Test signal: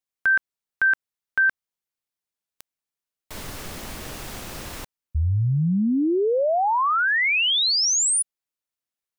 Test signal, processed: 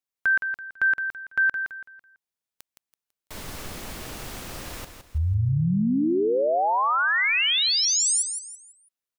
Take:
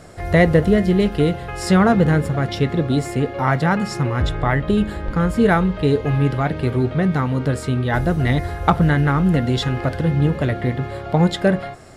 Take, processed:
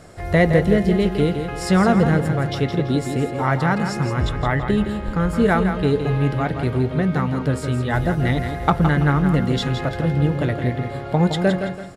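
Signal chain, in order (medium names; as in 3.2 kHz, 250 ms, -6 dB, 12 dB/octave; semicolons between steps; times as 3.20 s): feedback delay 166 ms, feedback 33%, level -8 dB; trim -2 dB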